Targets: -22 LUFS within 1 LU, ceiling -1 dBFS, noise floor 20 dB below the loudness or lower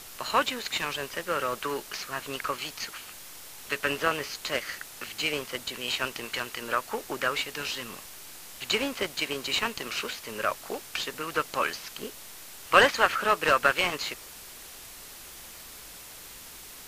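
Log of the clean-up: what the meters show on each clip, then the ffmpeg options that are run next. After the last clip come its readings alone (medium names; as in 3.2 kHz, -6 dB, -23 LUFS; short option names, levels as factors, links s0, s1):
noise floor -46 dBFS; noise floor target -49 dBFS; loudness -28.5 LUFS; peak level -6.0 dBFS; loudness target -22.0 LUFS
-> -af "afftdn=nr=6:nf=-46"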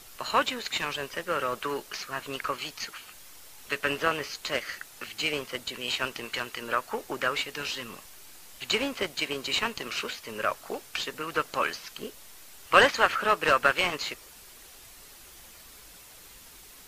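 noise floor -50 dBFS; loudness -28.5 LUFS; peak level -6.0 dBFS; loudness target -22.0 LUFS
-> -af "volume=2.11,alimiter=limit=0.891:level=0:latency=1"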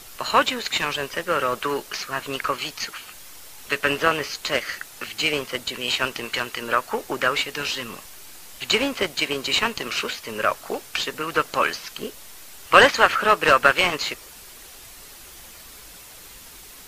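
loudness -22.5 LUFS; peak level -1.0 dBFS; noise floor -44 dBFS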